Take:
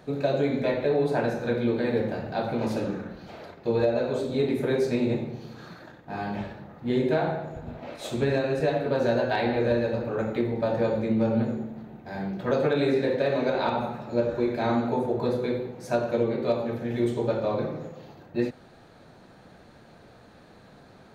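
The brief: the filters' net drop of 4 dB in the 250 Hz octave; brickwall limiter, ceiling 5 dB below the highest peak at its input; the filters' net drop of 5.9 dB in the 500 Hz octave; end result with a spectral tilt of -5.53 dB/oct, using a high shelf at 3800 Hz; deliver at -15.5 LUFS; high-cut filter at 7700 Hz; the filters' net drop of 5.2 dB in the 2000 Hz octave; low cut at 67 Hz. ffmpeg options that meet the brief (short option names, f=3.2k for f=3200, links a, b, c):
-af "highpass=67,lowpass=7.7k,equalizer=f=250:t=o:g=-3,equalizer=f=500:t=o:g=-6,equalizer=f=2k:t=o:g=-5,highshelf=f=3.8k:g=-7,volume=17.5dB,alimiter=limit=-4.5dB:level=0:latency=1"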